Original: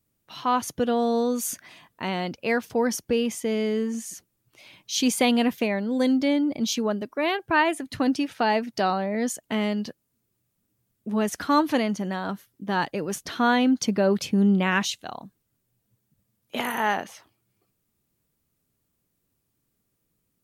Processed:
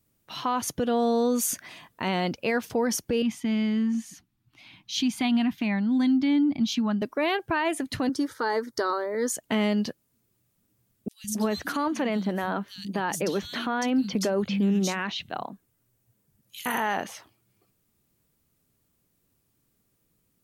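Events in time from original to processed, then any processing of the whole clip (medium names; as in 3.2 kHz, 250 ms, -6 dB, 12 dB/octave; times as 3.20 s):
3.22–7.02 s: FFT filter 290 Hz 0 dB, 500 Hz -24 dB, 730 Hz -5 dB, 3.8 kHz -4 dB, 7.7 kHz -14 dB
8.09–9.33 s: static phaser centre 710 Hz, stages 6
11.08–16.66 s: three bands offset in time highs, lows, mids 160/270 ms, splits 160/3800 Hz
whole clip: compression, threshold -22 dBFS; peak limiter -20.5 dBFS; trim +3.5 dB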